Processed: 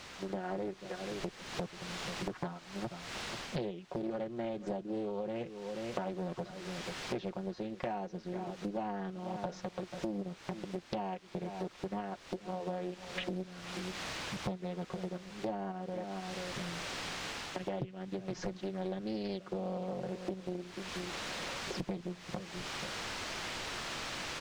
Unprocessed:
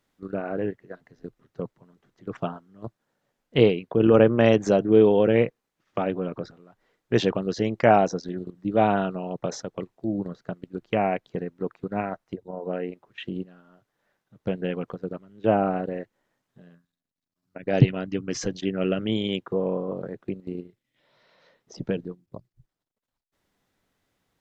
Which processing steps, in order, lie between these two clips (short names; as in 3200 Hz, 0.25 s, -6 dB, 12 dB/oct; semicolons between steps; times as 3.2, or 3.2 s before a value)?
random-step tremolo, depth 55%; in parallel at -12 dB: sample-and-hold 14×; on the sum: comb 5.5 ms, depth 79%; added noise white -44 dBFS; on a send: echo 0.485 s -20 dB; on the sum: AGC gain up to 12 dB; air absorption 140 m; compressor 8:1, threshold -38 dBFS, peak gain reduction 29.5 dB; Doppler distortion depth 0.88 ms; gain +2 dB